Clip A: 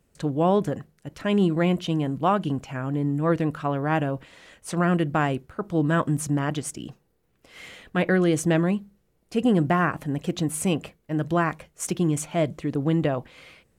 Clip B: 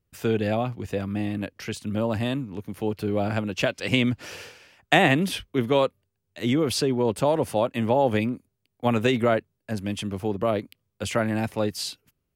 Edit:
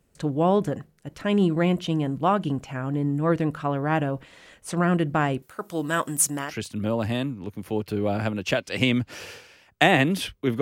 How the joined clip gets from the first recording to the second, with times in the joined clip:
clip A
0:05.42–0:06.55: RIAA equalisation recording
0:06.48: continue with clip B from 0:01.59, crossfade 0.14 s

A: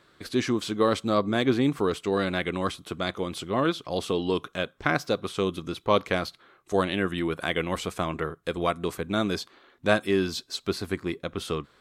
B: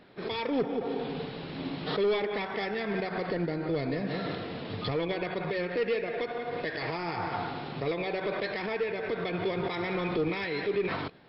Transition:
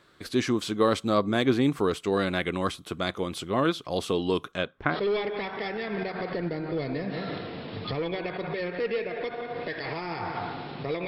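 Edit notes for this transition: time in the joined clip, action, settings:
A
0:04.51–0:05.00: low-pass filter 8,100 Hz → 1,300 Hz
0:04.94: continue with B from 0:01.91, crossfade 0.12 s

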